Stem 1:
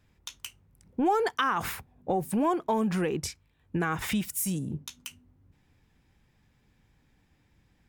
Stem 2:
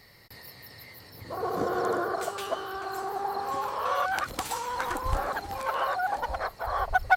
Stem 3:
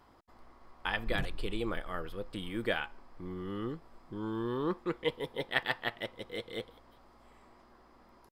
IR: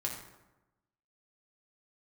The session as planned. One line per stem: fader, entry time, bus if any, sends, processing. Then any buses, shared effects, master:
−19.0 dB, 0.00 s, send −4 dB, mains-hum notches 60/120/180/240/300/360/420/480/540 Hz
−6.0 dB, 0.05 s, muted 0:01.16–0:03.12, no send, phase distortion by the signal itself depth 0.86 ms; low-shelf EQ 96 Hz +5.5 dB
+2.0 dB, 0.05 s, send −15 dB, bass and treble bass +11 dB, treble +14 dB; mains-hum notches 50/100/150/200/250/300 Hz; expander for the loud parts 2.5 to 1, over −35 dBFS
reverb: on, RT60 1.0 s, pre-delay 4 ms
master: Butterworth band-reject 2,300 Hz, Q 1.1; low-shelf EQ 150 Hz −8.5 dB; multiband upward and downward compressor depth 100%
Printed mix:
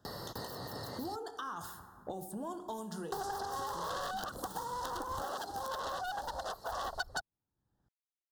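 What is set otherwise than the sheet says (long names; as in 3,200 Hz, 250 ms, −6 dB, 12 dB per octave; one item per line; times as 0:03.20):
stem 1 −19.0 dB → −27.0 dB
stem 3: muted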